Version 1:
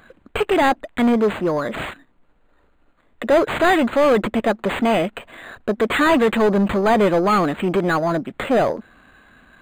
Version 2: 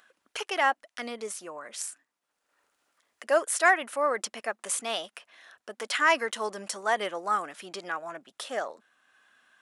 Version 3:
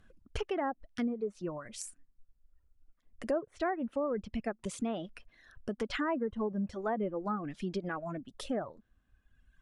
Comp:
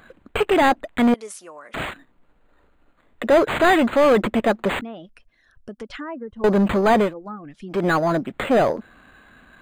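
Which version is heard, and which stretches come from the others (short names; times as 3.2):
1
1.14–1.74 from 2
4.81–6.44 from 3
7.06–7.76 from 3, crossfade 0.16 s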